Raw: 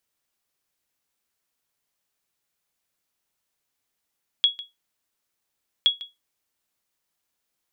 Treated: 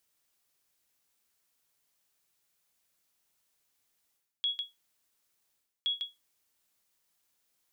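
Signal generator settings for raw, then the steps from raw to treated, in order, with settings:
sonar ping 3340 Hz, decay 0.19 s, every 1.42 s, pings 2, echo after 0.15 s, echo -18 dB -10 dBFS
high shelf 3800 Hz +4.5 dB; reverse; compressor 6:1, threshold -32 dBFS; reverse

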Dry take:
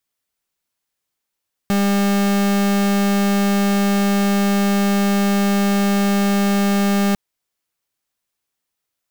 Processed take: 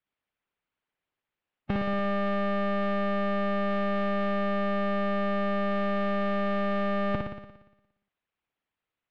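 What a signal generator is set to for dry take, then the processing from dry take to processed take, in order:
pulse 200 Hz, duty 41% -16.5 dBFS 5.45 s
LPF 3000 Hz 24 dB/oct; on a send: flutter echo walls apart 10 m, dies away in 0.95 s; on the sum: harmonic-percussive split harmonic -11 dB

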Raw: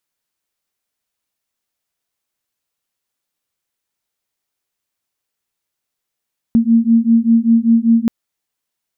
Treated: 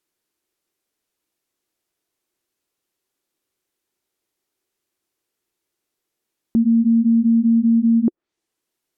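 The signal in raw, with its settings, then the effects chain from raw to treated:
beating tones 227 Hz, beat 5.1 Hz, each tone -12 dBFS 1.53 s
treble ducked by the level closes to 620 Hz, closed at -13.5 dBFS; bell 350 Hz +12.5 dB 0.74 oct; limiter -11 dBFS

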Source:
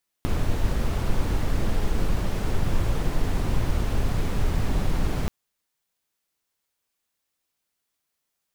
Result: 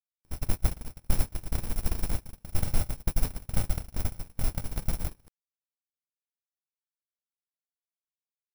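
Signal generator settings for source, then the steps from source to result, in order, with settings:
noise brown, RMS -21.5 dBFS 5.03 s
FFT order left unsorted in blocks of 64 samples; gate -19 dBFS, range -41 dB

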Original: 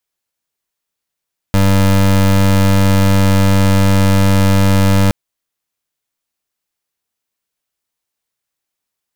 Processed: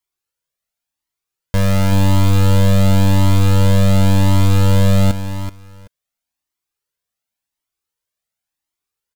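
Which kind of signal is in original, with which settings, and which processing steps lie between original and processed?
pulse 97.3 Hz, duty 26% -10 dBFS 3.57 s
on a send: feedback echo 0.38 s, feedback 17%, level -10 dB; on the sum: cascading flanger rising 0.92 Hz

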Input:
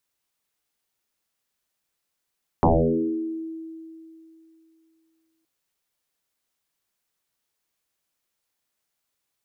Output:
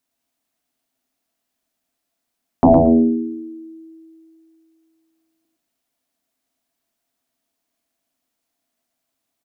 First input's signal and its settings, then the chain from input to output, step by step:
FM tone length 2.82 s, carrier 324 Hz, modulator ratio 0.26, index 8.6, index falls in 1.18 s exponential, decay 2.86 s, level -13 dB
small resonant body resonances 260/670 Hz, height 15 dB, ringing for 60 ms; on a send: feedback echo 0.113 s, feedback 15%, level -5 dB

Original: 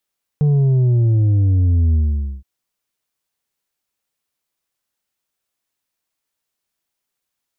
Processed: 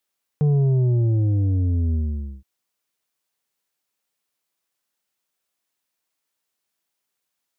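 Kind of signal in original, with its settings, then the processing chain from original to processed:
sub drop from 150 Hz, over 2.02 s, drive 5 dB, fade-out 0.49 s, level -12 dB
HPF 160 Hz 6 dB/oct

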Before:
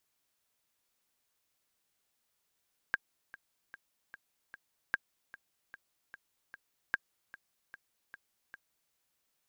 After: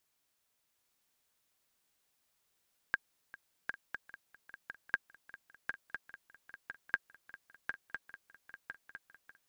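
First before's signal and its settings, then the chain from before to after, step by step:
metronome 150 bpm, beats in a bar 5, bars 3, 1610 Hz, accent 19 dB -16 dBFS
on a send: swung echo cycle 1.005 s, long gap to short 3:1, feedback 47%, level -6 dB

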